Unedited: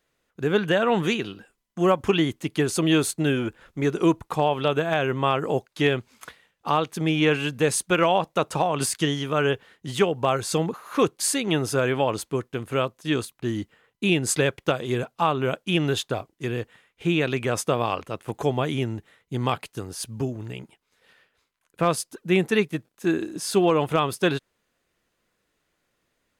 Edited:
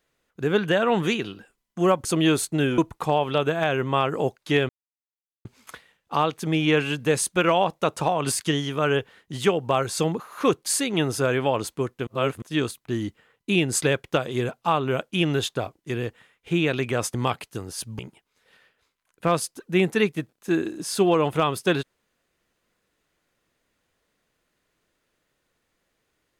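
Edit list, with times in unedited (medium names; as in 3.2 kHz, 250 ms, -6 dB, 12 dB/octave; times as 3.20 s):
2.05–2.71 s: delete
3.44–4.08 s: delete
5.99 s: insert silence 0.76 s
12.61–12.96 s: reverse
17.68–19.36 s: delete
20.21–20.55 s: delete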